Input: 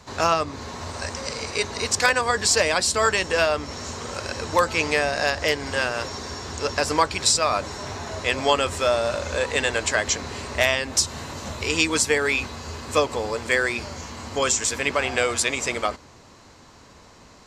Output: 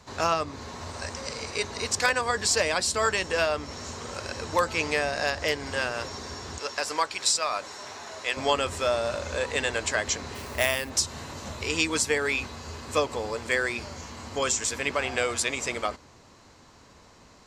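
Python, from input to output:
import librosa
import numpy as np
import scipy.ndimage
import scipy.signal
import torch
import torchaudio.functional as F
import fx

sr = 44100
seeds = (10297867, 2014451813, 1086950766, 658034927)

y = fx.highpass(x, sr, hz=700.0, slope=6, at=(6.58, 8.37))
y = fx.sample_hold(y, sr, seeds[0], rate_hz=13000.0, jitter_pct=0, at=(10.34, 10.89), fade=0.02)
y = y * 10.0 ** (-4.5 / 20.0)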